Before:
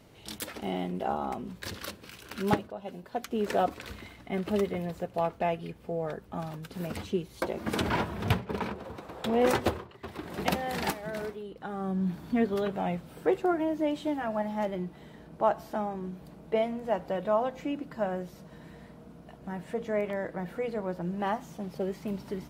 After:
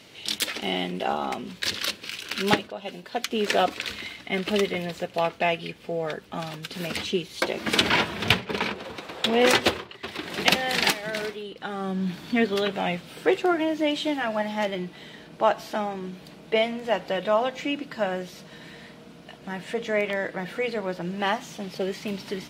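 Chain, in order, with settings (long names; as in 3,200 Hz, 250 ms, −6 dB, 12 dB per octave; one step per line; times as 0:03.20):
meter weighting curve D
level +4.5 dB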